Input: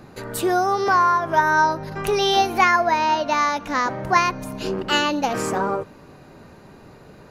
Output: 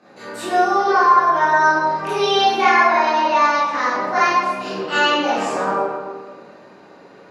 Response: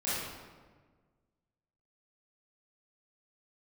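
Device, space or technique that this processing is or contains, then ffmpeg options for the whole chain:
supermarket ceiling speaker: -filter_complex "[0:a]highpass=340,lowpass=6500[s0];[1:a]atrim=start_sample=2205[s1];[s0][s1]afir=irnorm=-1:irlink=0,volume=0.668"

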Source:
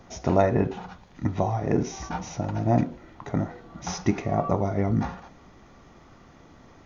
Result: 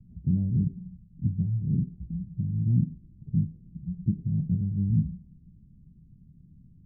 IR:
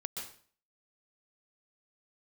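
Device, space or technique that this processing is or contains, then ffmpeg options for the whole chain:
the neighbour's flat through the wall: -af "lowpass=f=180:w=0.5412,lowpass=f=180:w=1.3066,equalizer=f=170:t=o:w=0.66:g=7"

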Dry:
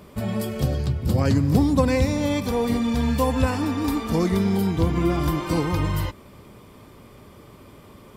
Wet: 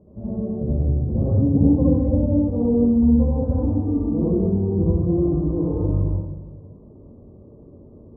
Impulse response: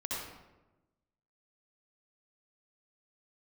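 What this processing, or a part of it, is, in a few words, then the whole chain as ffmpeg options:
next room: -filter_complex "[0:a]lowpass=f=590:w=0.5412,lowpass=f=590:w=1.3066[s0];[1:a]atrim=start_sample=2205[s1];[s0][s1]afir=irnorm=-1:irlink=0,volume=0.794"

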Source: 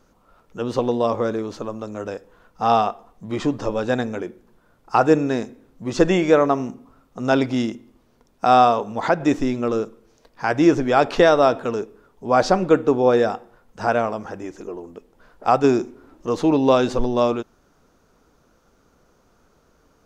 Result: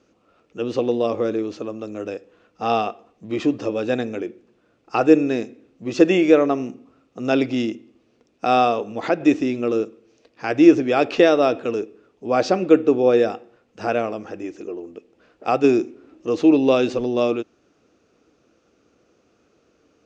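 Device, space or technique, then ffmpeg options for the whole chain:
car door speaker: -af "highpass=98,equalizer=f=160:t=q:w=4:g=-5,equalizer=f=320:t=q:w=4:g=7,equalizer=f=470:t=q:w=4:g=3,equalizer=f=950:t=q:w=4:g=-9,equalizer=f=1500:t=q:w=4:g=-3,equalizer=f=2600:t=q:w=4:g=8,lowpass=f=7100:w=0.5412,lowpass=f=7100:w=1.3066,volume=0.794"

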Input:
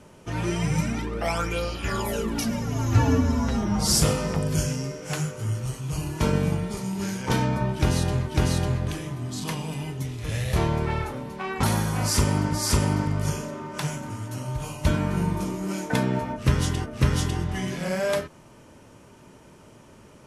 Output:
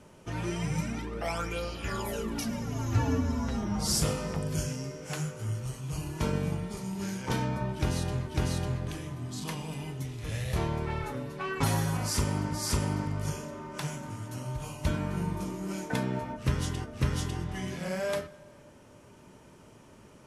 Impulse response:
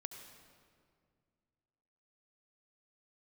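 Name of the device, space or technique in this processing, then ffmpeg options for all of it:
ducked reverb: -filter_complex "[0:a]asettb=1/sr,asplit=3[s0][s1][s2];[s0]atrim=end=11.034[s3];[s1]atrim=start=11.03:end=11.97,asetpts=PTS-STARTPTS,afade=t=in:d=0.004:c=qsin,afade=t=out:st=0.936:d=0.004:c=qsin,aecho=1:1:7.2:0.98,atrim=end_sample=41454[s4];[s2]atrim=start=11.966[s5];[s3][s4]acrossfade=d=0.004:c1=hsin:c2=qsin[s6];[s6][s5]acrossfade=d=0.004:c1=qsin:c2=hsin,asplit=3[s7][s8][s9];[1:a]atrim=start_sample=2205[s10];[s8][s10]afir=irnorm=-1:irlink=0[s11];[s9]apad=whole_len=893576[s12];[s11][s12]sidechaincompress=threshold=0.0355:ratio=8:attack=16:release=1430,volume=0.944[s13];[s7][s13]amix=inputs=2:normalize=0,volume=0.398"

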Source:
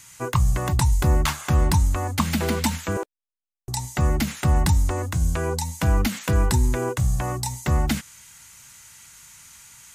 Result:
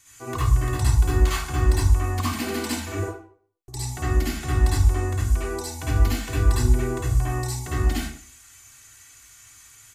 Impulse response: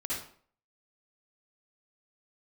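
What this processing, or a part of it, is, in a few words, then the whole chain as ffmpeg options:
microphone above a desk: -filter_complex "[0:a]aecho=1:1:2.7:0.76[s0];[1:a]atrim=start_sample=2205[s1];[s0][s1]afir=irnorm=-1:irlink=0,volume=0.422"

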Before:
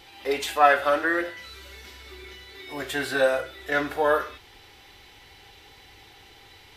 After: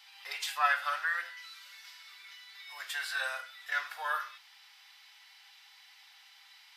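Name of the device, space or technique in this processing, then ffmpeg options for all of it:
headphones lying on a table: -af "highpass=f=1000:w=0.5412,highpass=f=1000:w=1.3066,equalizer=f=5000:t=o:w=0.29:g=6,volume=0.501"

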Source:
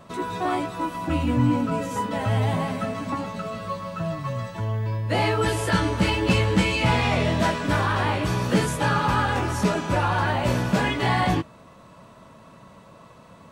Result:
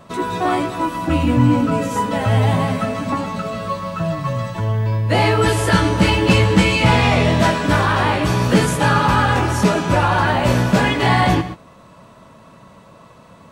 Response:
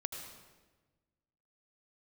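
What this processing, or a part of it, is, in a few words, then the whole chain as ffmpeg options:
keyed gated reverb: -filter_complex "[0:a]asplit=3[s0][s1][s2];[1:a]atrim=start_sample=2205[s3];[s1][s3]afir=irnorm=-1:irlink=0[s4];[s2]apad=whole_len=596044[s5];[s4][s5]sidechaingate=range=0.0224:threshold=0.0126:ratio=16:detection=peak,volume=0.531[s6];[s0][s6]amix=inputs=2:normalize=0,volume=1.5"

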